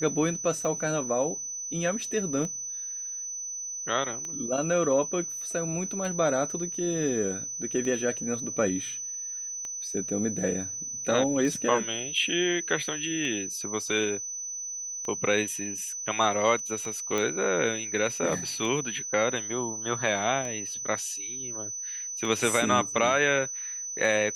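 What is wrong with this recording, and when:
tick 33 1/3 rpm -22 dBFS
whine 6 kHz -33 dBFS
17.18 s: pop -15 dBFS

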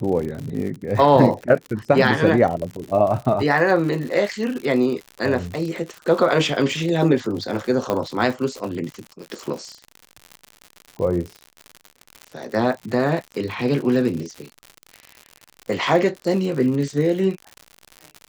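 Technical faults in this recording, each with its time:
crackle 95 per s -28 dBFS
7.90 s: pop -9 dBFS

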